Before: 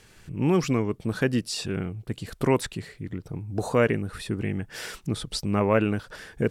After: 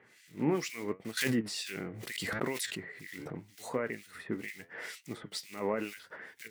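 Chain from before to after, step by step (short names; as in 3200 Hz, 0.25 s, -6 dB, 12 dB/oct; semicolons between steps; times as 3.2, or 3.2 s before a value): block floating point 5-bit; HPF 220 Hz 12 dB/oct; bell 2000 Hz +12 dB 0.24 oct; limiter -16.5 dBFS, peak gain reduction 11 dB; flange 0.79 Hz, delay 7.3 ms, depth 7.3 ms, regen +70%; harmonic tremolo 2.1 Hz, depth 100%, crossover 2000 Hz; 1.17–3.43 backwards sustainer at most 27 dB/s; gain +1.5 dB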